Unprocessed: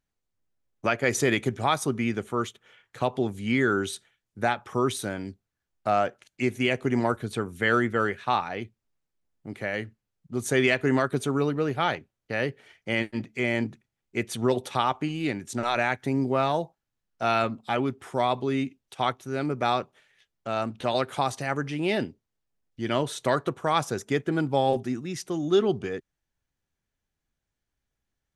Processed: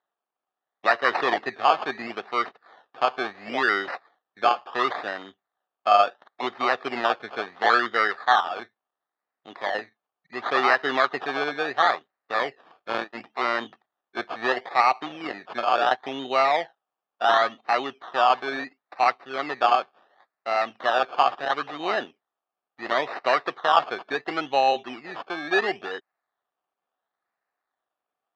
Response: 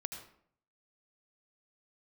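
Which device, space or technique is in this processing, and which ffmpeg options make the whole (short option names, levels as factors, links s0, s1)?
circuit-bent sampling toy: -af "acrusher=samples=18:mix=1:aa=0.000001:lfo=1:lforange=10.8:lforate=0.72,highpass=460,equalizer=f=740:t=q:w=4:g=9,equalizer=f=1200:t=q:w=4:g=8,equalizer=f=1800:t=q:w=4:g=8,equalizer=f=3700:t=q:w=4:g=4,lowpass=f=4300:w=0.5412,lowpass=f=4300:w=1.3066"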